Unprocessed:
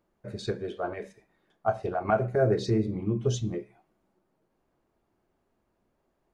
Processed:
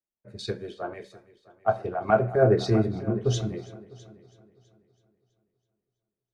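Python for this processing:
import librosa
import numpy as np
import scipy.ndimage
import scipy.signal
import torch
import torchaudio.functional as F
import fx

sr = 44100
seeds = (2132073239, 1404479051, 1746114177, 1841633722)

y = fx.dynamic_eq(x, sr, hz=7100.0, q=2.0, threshold_db=-58.0, ratio=4.0, max_db=-6)
y = fx.echo_heads(y, sr, ms=327, heads='first and second', feedback_pct=53, wet_db=-15.5)
y = fx.band_widen(y, sr, depth_pct=70)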